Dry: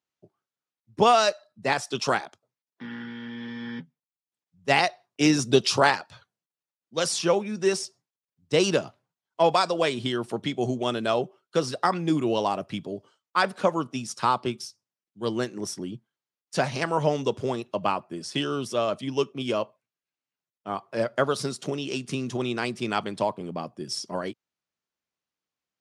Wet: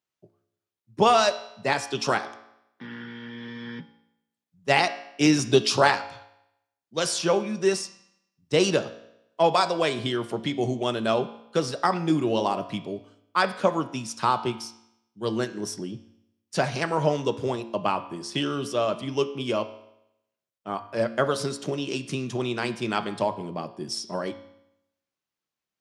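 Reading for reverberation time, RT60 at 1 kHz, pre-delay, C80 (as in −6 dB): 0.80 s, 0.80 s, 4 ms, 16.0 dB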